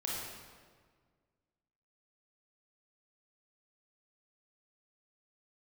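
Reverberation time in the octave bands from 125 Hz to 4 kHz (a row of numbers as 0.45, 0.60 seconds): 2.1, 2.0, 1.8, 1.6, 1.4, 1.2 seconds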